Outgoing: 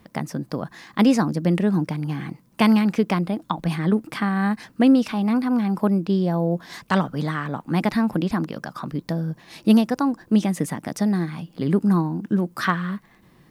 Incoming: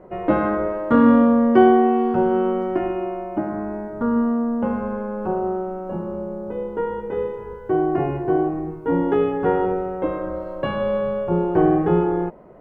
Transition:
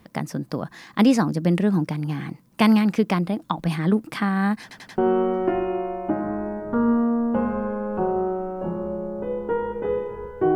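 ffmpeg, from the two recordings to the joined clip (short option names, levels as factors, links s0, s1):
-filter_complex "[0:a]apad=whole_dur=10.55,atrim=end=10.55,asplit=4[s0][s1][s2][s3];[s0]atrim=end=4.712[s4];[s1]atrim=start=4.618:end=4.712[s5];[s2]atrim=start=4.618:end=4.712[s6];[s3]atrim=start=4.618:end=4.712[s7];[1:a]atrim=start=2.258:end=7.83[s8];[s4][s5]acrossfade=d=0.004:c1=hsin:c2=hsin[s9];[s9][s6]acrossfade=d=0.004:c1=hsin:c2=hsin[s10];[s10][s7]acrossfade=d=0.004:c1=hsin:c2=hsin[s11];[s11][s8]acrossfade=d=0.004:c1=hsin:c2=hsin"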